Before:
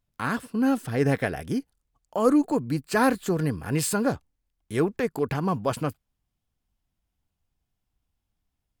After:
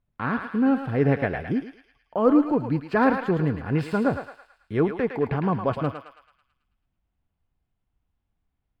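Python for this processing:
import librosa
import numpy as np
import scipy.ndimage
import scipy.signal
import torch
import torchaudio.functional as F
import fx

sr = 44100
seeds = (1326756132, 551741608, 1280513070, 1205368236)

p1 = fx.air_absorb(x, sr, metres=400.0)
p2 = p1 + fx.echo_thinned(p1, sr, ms=109, feedback_pct=58, hz=1000.0, wet_db=-4.0, dry=0)
y = p2 * 10.0 ** (2.5 / 20.0)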